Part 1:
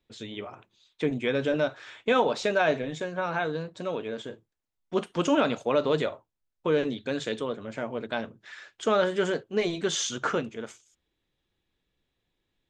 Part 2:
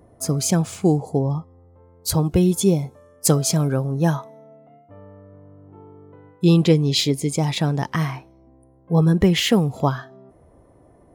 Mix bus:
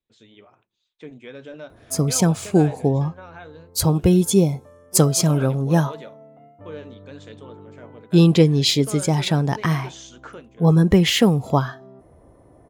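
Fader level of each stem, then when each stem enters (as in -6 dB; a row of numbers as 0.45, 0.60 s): -12.0, +1.5 dB; 0.00, 1.70 s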